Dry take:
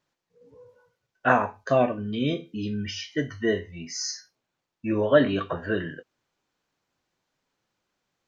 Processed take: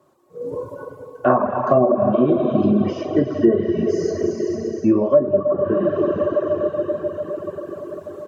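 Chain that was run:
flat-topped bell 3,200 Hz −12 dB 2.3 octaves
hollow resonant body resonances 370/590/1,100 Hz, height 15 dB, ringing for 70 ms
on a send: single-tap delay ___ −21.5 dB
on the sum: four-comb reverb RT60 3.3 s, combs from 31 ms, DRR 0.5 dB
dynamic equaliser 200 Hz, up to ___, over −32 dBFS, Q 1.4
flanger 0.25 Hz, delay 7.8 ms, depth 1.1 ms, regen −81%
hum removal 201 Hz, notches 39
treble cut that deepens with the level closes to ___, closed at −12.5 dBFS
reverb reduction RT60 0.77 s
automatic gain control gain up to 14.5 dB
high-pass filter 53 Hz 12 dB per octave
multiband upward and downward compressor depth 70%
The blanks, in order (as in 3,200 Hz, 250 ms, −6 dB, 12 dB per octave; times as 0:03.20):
408 ms, +6 dB, 1,100 Hz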